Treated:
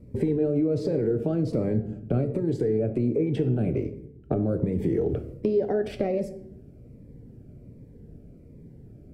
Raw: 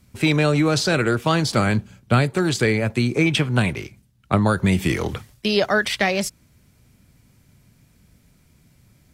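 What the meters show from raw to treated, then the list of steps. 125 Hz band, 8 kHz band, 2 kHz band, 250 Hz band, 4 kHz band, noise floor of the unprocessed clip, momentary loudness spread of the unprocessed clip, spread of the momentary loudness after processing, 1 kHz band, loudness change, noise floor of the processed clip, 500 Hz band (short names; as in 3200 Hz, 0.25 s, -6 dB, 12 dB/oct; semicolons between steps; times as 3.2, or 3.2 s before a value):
-6.5 dB, under -25 dB, -25.5 dB, -4.5 dB, under -25 dB, -58 dBFS, 7 LU, 6 LU, -16.0 dB, -6.0 dB, -49 dBFS, -2.5 dB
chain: EQ curve 180 Hz 0 dB, 460 Hz +11 dB, 1100 Hz -15 dB, 1800 Hz -12 dB, 3500 Hz -17 dB, 7900 Hz +4 dB; limiter -15.5 dBFS, peak gain reduction 14 dB; compressor, threshold -28 dBFS, peak gain reduction 9 dB; air absorption 390 m; shoebox room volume 180 m³, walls mixed, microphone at 0.36 m; cascading phaser falling 1.3 Hz; gain +7.5 dB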